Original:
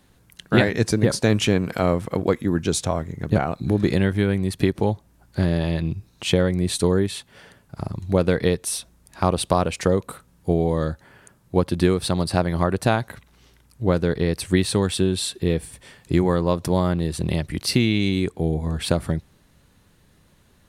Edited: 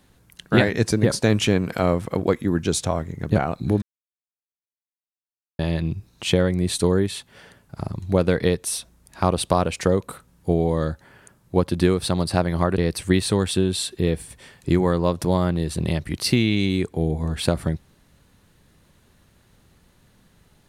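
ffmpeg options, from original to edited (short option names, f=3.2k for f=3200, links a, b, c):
-filter_complex "[0:a]asplit=4[a][b][c][d];[a]atrim=end=3.82,asetpts=PTS-STARTPTS,afade=t=out:st=3.816:d=0.004:c=hsin[e];[b]atrim=start=3.82:end=5.59,asetpts=PTS-STARTPTS,volume=0[f];[c]atrim=start=5.59:end=12.782,asetpts=PTS-STARTPTS,afade=t=in:d=0.004:c=hsin[g];[d]atrim=start=14.208[h];[e][f][g]concat=n=3:v=0:a=1[i];[i][h]acrossfade=d=0.004:c1=hsin:c2=hsin"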